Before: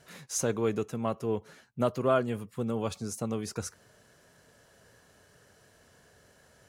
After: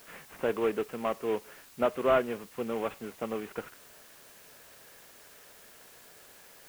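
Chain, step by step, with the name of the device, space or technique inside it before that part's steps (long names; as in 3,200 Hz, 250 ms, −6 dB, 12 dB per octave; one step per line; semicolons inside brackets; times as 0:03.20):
army field radio (band-pass filter 320–3,200 Hz; variable-slope delta modulation 16 kbit/s; white noise bed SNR 21 dB)
level +2.5 dB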